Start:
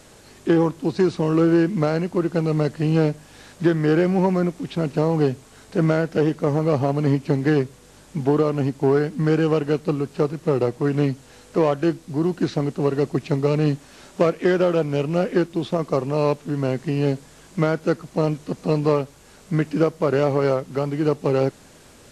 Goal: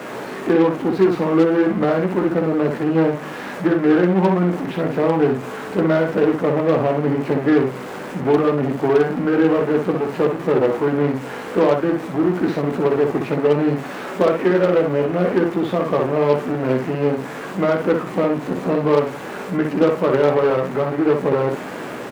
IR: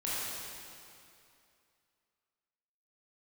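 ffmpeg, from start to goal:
-filter_complex "[0:a]aeval=exprs='val(0)+0.5*0.0708*sgn(val(0))':channel_layout=same,acrossover=split=160 2300:gain=0.0891 1 0.1[link_01][link_02][link_03];[link_01][link_02][link_03]amix=inputs=3:normalize=0,asplit=2[link_04][link_05];[link_05]aecho=0:1:16|62:0.562|0.668[link_06];[link_04][link_06]amix=inputs=2:normalize=0,aeval=exprs='0.531*(cos(1*acos(clip(val(0)/0.531,-1,1)))-cos(1*PI/2))+0.0299*(cos(8*acos(clip(val(0)/0.531,-1,1)))-cos(8*PI/2))':channel_layout=same,highpass=88"

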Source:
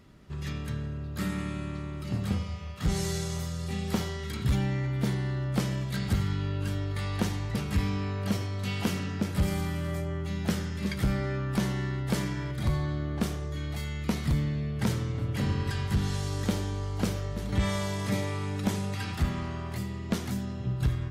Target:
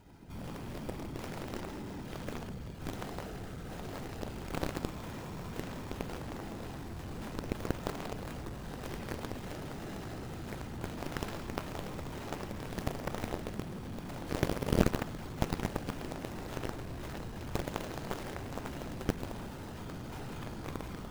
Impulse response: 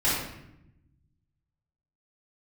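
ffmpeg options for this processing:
-filter_complex "[0:a]acrusher=samples=39:mix=1:aa=0.000001,asoftclip=type=tanh:threshold=-35dB,asplit=2[link_01][link_02];[1:a]atrim=start_sample=2205,lowshelf=frequency=68:gain=-4[link_03];[link_02][link_03]afir=irnorm=-1:irlink=0,volume=-13.5dB[link_04];[link_01][link_04]amix=inputs=2:normalize=0,afftfilt=real='hypot(re,im)*cos(2*PI*random(0))':imag='hypot(re,im)*sin(2*PI*random(1))':win_size=512:overlap=0.75,aeval=exprs='0.0631*(cos(1*acos(clip(val(0)/0.0631,-1,1)))-cos(1*PI/2))+0.0282*(cos(3*acos(clip(val(0)/0.0631,-1,1)))-cos(3*PI/2))+0.00178*(cos(5*acos(clip(val(0)/0.0631,-1,1)))-cos(5*PI/2))+0.000447*(cos(8*acos(clip(val(0)/0.0631,-1,1)))-cos(8*PI/2))':channel_layout=same,volume=16dB"

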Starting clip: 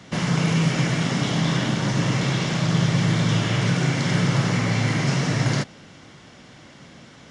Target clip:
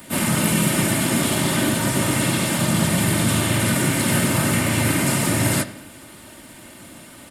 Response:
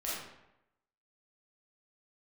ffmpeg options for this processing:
-filter_complex "[0:a]asplit=4[link_01][link_02][link_03][link_04];[link_02]asetrate=35002,aresample=44100,atempo=1.25992,volume=-9dB[link_05];[link_03]asetrate=55563,aresample=44100,atempo=0.793701,volume=-6dB[link_06];[link_04]asetrate=58866,aresample=44100,atempo=0.749154,volume=-13dB[link_07];[link_01][link_05][link_06][link_07]amix=inputs=4:normalize=0,aecho=1:1:3.3:0.49,aexciter=amount=14.1:drive=6:freq=8700,asplit=2[link_08][link_09];[1:a]atrim=start_sample=2205,lowpass=5000[link_10];[link_09][link_10]afir=irnorm=-1:irlink=0,volume=-15dB[link_11];[link_08][link_11]amix=inputs=2:normalize=0"

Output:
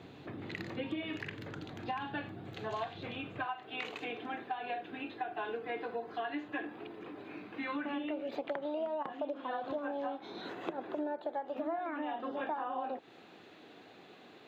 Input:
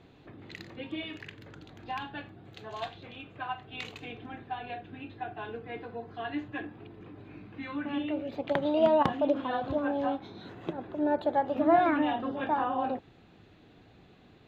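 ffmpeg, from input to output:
ffmpeg -i in.wav -filter_complex "[0:a]acrossover=split=2500[link_01][link_02];[link_02]acompressor=threshold=-53dB:ratio=4:attack=1:release=60[link_03];[link_01][link_03]amix=inputs=2:normalize=0,asetnsamples=nb_out_samples=441:pad=0,asendcmd='3.45 highpass f 330',highpass=100,acompressor=threshold=-39dB:ratio=16,volume=5.5dB" out.wav

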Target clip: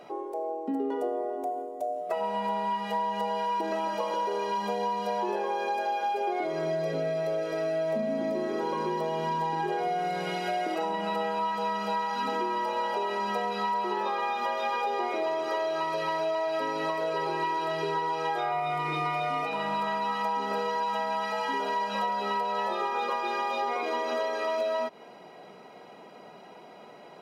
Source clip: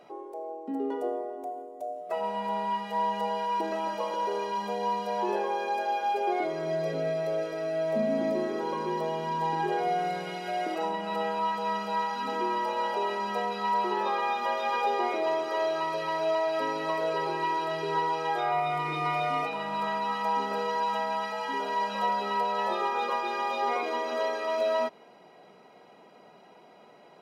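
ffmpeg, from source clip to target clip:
ffmpeg -i in.wav -af "acompressor=threshold=-32dB:ratio=6,volume=5.5dB" out.wav

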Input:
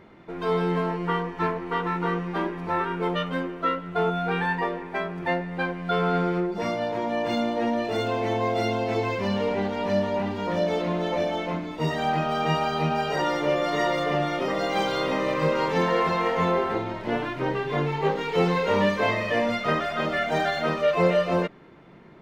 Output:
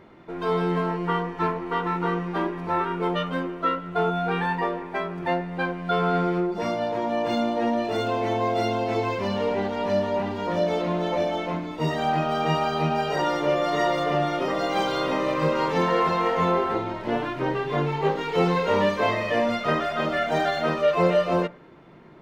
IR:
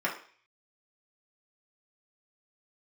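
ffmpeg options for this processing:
-filter_complex "[0:a]asplit=2[link_01][link_02];[1:a]atrim=start_sample=2205,lowpass=frequency=2400:width=0.5412,lowpass=frequency=2400:width=1.3066[link_03];[link_02][link_03]afir=irnorm=-1:irlink=0,volume=-21dB[link_04];[link_01][link_04]amix=inputs=2:normalize=0"

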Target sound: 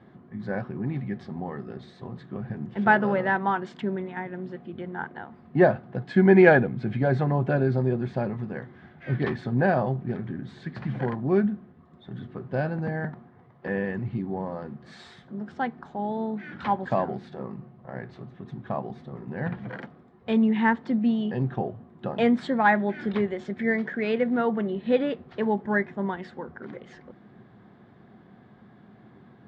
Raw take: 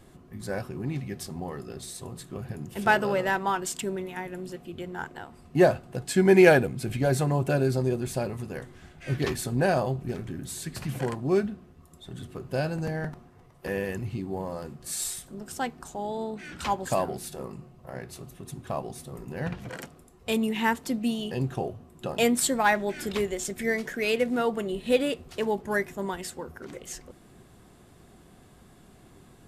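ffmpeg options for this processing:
ffmpeg -i in.wav -af "highpass=120,equalizer=frequency=120:width_type=q:width=4:gain=6,equalizer=frequency=210:width_type=q:width=4:gain=8,equalizer=frequency=820:width_type=q:width=4:gain=3,equalizer=frequency=1700:width_type=q:width=4:gain=4,equalizer=frequency=2700:width_type=q:width=4:gain=-9,lowpass=frequency=3200:width=0.5412,lowpass=frequency=3200:width=1.3066" out.wav

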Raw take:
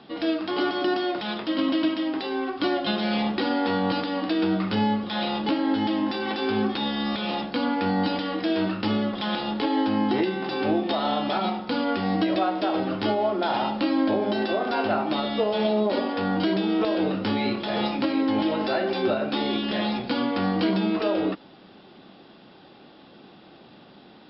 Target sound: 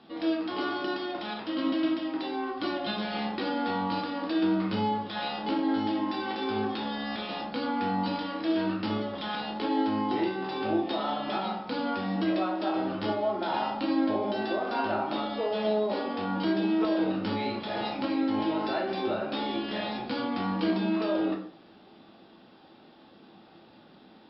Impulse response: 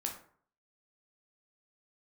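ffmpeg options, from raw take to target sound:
-filter_complex "[1:a]atrim=start_sample=2205[link_01];[0:a][link_01]afir=irnorm=-1:irlink=0,volume=-6dB"

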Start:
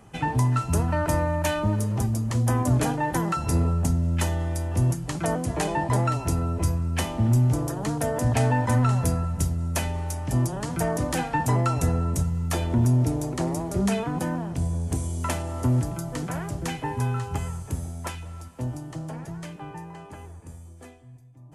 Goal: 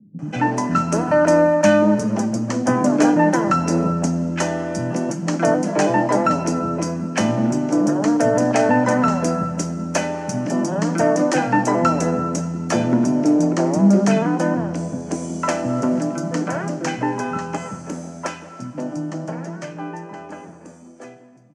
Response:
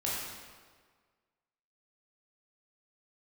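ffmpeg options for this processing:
-filter_complex "[0:a]highpass=frequency=170:width=0.5412,highpass=frequency=170:width=1.3066,equalizer=frequency=200:width_type=q:width=4:gain=10,equalizer=frequency=300:width_type=q:width=4:gain=7,equalizer=frequency=580:width_type=q:width=4:gain=8,equalizer=frequency=1500:width_type=q:width=4:gain=5,equalizer=frequency=3600:width_type=q:width=4:gain=-9,equalizer=frequency=5900:width_type=q:width=4:gain=5,lowpass=frequency=7200:width=0.5412,lowpass=frequency=7200:width=1.3066,acrossover=split=220[link_01][link_02];[link_02]adelay=190[link_03];[link_01][link_03]amix=inputs=2:normalize=0,asplit=2[link_04][link_05];[1:a]atrim=start_sample=2205[link_06];[link_05][link_06]afir=irnorm=-1:irlink=0,volume=-18dB[link_07];[link_04][link_07]amix=inputs=2:normalize=0,volume=5dB"

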